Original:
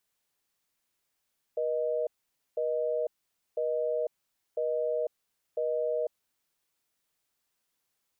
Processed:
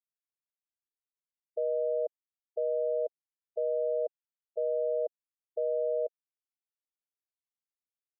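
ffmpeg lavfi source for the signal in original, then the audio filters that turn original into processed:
-f lavfi -i "aevalsrc='0.0335*(sin(2*PI*480*t)+sin(2*PI*620*t))*clip(min(mod(t,1),0.5-mod(t,1))/0.005,0,1)':duration=4.71:sample_rate=44100"
-af "afftfilt=real='re*gte(hypot(re,im),0.0631)':imag='im*gte(hypot(re,im),0.0631)':win_size=1024:overlap=0.75"

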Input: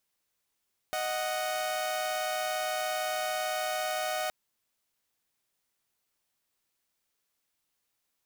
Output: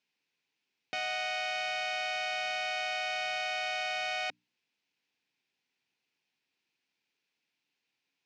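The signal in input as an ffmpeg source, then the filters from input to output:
-f lavfi -i "aevalsrc='0.0316*((2*mod(622.25*t,1)-1)+(2*mod(739.99*t,1)-1))':duration=3.37:sample_rate=44100"
-af "highpass=frequency=120:width=0.5412,highpass=frequency=120:width=1.3066,equalizer=frequency=270:width_type=q:width=4:gain=4,equalizer=frequency=610:width_type=q:width=4:gain=-8,equalizer=frequency=1200:width_type=q:width=4:gain=-9,equalizer=frequency=2500:width_type=q:width=4:gain=8,lowpass=frequency=5300:width=0.5412,lowpass=frequency=5300:width=1.3066,bandreject=frequency=60:width_type=h:width=6,bandreject=frequency=120:width_type=h:width=6,bandreject=frequency=180:width_type=h:width=6,bandreject=frequency=240:width_type=h:width=6,bandreject=frequency=300:width_type=h:width=6"

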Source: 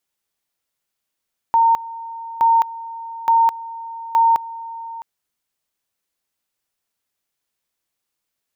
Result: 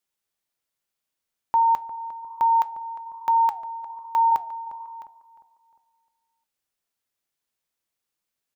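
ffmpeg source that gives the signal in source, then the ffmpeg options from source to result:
-f lavfi -i "aevalsrc='pow(10,(-10.5-18*gte(mod(t,0.87),0.21))/20)*sin(2*PI*916*t)':duration=3.48:sample_rate=44100"
-filter_complex "[0:a]flanger=delay=5:depth=4.1:regen=-84:speed=1.2:shape=sinusoidal,asplit=2[link_01][link_02];[link_02]adelay=354,lowpass=frequency=1400:poles=1,volume=-13.5dB,asplit=2[link_03][link_04];[link_04]adelay=354,lowpass=frequency=1400:poles=1,volume=0.43,asplit=2[link_05][link_06];[link_06]adelay=354,lowpass=frequency=1400:poles=1,volume=0.43,asplit=2[link_07][link_08];[link_08]adelay=354,lowpass=frequency=1400:poles=1,volume=0.43[link_09];[link_01][link_03][link_05][link_07][link_09]amix=inputs=5:normalize=0"

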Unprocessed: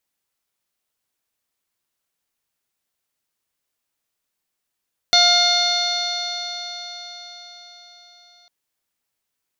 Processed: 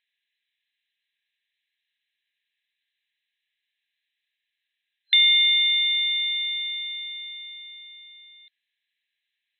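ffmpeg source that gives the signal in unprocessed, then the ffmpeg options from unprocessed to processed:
-f lavfi -i "aevalsrc='0.119*pow(10,-3*t/4.94)*sin(2*PI*703.49*t)+0.0668*pow(10,-3*t/4.94)*sin(2*PI*1409.93*t)+0.075*pow(10,-3*t/4.94)*sin(2*PI*2122.25*t)+0.0178*pow(10,-3*t/4.94)*sin(2*PI*2843.32*t)+0.168*pow(10,-3*t/4.94)*sin(2*PI*3575.98*t)+0.211*pow(10,-3*t/4.94)*sin(2*PI*4322.99*t)+0.0447*pow(10,-3*t/4.94)*sin(2*PI*5086.99*t)+0.0631*pow(10,-3*t/4.94)*sin(2*PI*5870.55*t)+0.0168*pow(10,-3*t/4.94)*sin(2*PI*6676.11*t)':duration=3.35:sample_rate=44100"
-filter_complex "[0:a]afftfilt=real='re*between(b*sr/4096,1600,4100)':imag='im*between(b*sr/4096,1600,4100)':win_size=4096:overlap=0.75,asplit=2[link_01][link_02];[link_02]acompressor=threshold=-29dB:ratio=6,volume=1.5dB[link_03];[link_01][link_03]amix=inputs=2:normalize=0"

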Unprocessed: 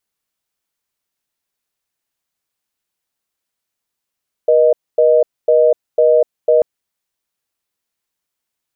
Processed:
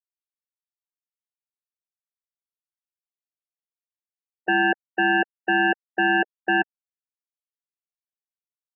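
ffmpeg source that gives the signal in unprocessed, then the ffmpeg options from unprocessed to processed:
-f lavfi -i "aevalsrc='0.299*(sin(2*PI*480*t)+sin(2*PI*620*t))*clip(min(mod(t,0.5),0.25-mod(t,0.5))/0.005,0,1)':duration=2.14:sample_rate=44100"
-af "aresample=16000,aeval=exprs='0.2*(abs(mod(val(0)/0.2+3,4)-2)-1)':channel_layout=same,aresample=44100,afftfilt=real='re*gte(hypot(re,im),0.141)':imag='im*gte(hypot(re,im),0.141)':win_size=1024:overlap=0.75"

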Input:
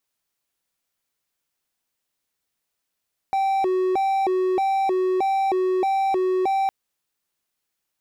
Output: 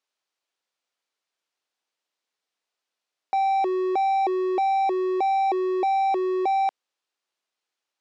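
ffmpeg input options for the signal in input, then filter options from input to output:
-f lavfi -i "aevalsrc='0.15*(1-4*abs(mod((574.5*t+203.5/1.6*(0.5-abs(mod(1.6*t,1)-0.5)))+0.25,1)-0.5))':duration=3.36:sample_rate=44100"
-af "highpass=370,lowpass=5400,equalizer=frequency=1900:width_type=o:width=0.77:gain=-2"

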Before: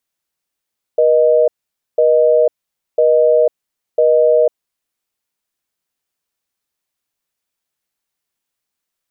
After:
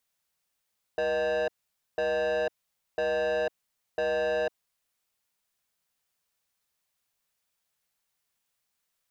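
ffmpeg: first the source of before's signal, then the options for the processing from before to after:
-f lavfi -i "aevalsrc='0.282*(sin(2*PI*480*t)+sin(2*PI*620*t))*clip(min(mod(t,1),0.5-mod(t,1))/0.005,0,1)':duration=3.82:sample_rate=44100"
-af "asoftclip=type=tanh:threshold=-19dB,equalizer=frequency=320:width_type=o:width=0.66:gain=-7.5,alimiter=limit=-23dB:level=0:latency=1:release=27"

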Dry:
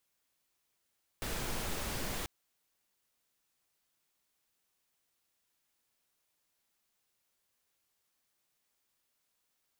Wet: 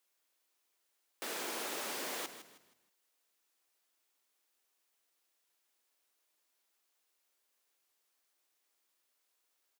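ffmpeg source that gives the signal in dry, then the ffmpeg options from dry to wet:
-f lavfi -i "anoisesrc=color=pink:amplitude=0.0724:duration=1.04:sample_rate=44100:seed=1"
-filter_complex "[0:a]highpass=frequency=290:width=0.5412,highpass=frequency=290:width=1.3066,asplit=5[link_01][link_02][link_03][link_04][link_05];[link_02]adelay=158,afreqshift=-32,volume=-11.5dB[link_06];[link_03]adelay=316,afreqshift=-64,volume=-20.9dB[link_07];[link_04]adelay=474,afreqshift=-96,volume=-30.2dB[link_08];[link_05]adelay=632,afreqshift=-128,volume=-39.6dB[link_09];[link_01][link_06][link_07][link_08][link_09]amix=inputs=5:normalize=0"

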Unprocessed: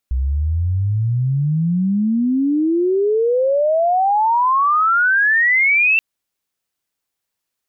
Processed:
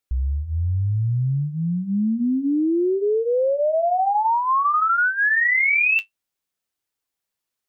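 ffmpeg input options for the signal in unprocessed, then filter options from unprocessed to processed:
-f lavfi -i "aevalsrc='pow(10,(-15.5+4.5*t/5.88)/20)*sin(2*PI*62*5.88/log(2700/62)*(exp(log(2700/62)*t/5.88)-1))':duration=5.88:sample_rate=44100"
-af "flanger=delay=2.2:depth=7.7:regen=-55:speed=0.58:shape=sinusoidal"

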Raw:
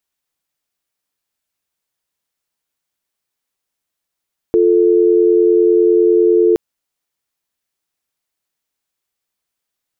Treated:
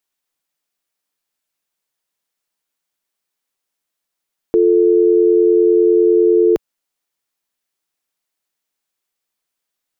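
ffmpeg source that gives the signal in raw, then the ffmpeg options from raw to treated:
-f lavfi -i "aevalsrc='0.282*(sin(2*PI*350*t)+sin(2*PI*440*t))':duration=2.02:sample_rate=44100"
-af "equalizer=frequency=72:width=0.99:gain=-11"

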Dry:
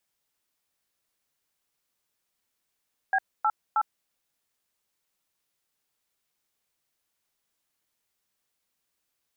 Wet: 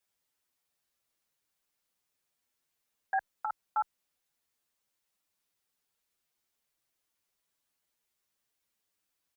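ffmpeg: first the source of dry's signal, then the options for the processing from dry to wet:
-f lavfi -i "aevalsrc='0.0708*clip(min(mod(t,0.315),0.055-mod(t,0.315))/0.002,0,1)*(eq(floor(t/0.315),0)*(sin(2*PI*770*mod(t,0.315))+sin(2*PI*1633*mod(t,0.315)))+eq(floor(t/0.315),1)*(sin(2*PI*852*mod(t,0.315))+sin(2*PI*1336*mod(t,0.315)))+eq(floor(t/0.315),2)*(sin(2*PI*852*mod(t,0.315))+sin(2*PI*1336*mod(t,0.315))))':duration=0.945:sample_rate=44100"
-filter_complex "[0:a]asplit=2[link_01][link_02];[link_02]adelay=7.4,afreqshift=-0.55[link_03];[link_01][link_03]amix=inputs=2:normalize=1"

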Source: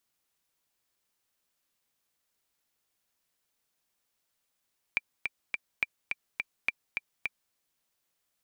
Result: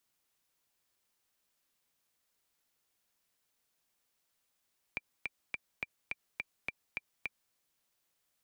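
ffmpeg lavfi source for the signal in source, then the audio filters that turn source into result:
-f lavfi -i "aevalsrc='pow(10,(-13-4.5*gte(mod(t,3*60/210),60/210))/20)*sin(2*PI*2360*mod(t,60/210))*exp(-6.91*mod(t,60/210)/0.03)':duration=2.57:sample_rate=44100"
-filter_complex "[0:a]acrossover=split=160|830[link_01][link_02][link_03];[link_03]alimiter=limit=-23.5dB:level=0:latency=1:release=86[link_04];[link_01][link_02][link_04]amix=inputs=3:normalize=0"

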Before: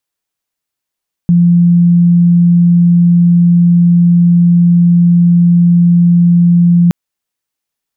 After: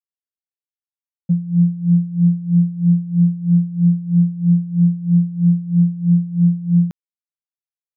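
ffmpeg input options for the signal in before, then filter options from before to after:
-f lavfi -i "sine=frequency=173:duration=5.62:sample_rate=44100,volume=14.06dB"
-af "agate=range=-33dB:threshold=-4dB:ratio=3:detection=peak,aeval=exprs='val(0)*pow(10,-18*(0.5-0.5*cos(2*PI*3.1*n/s))/20)':channel_layout=same"

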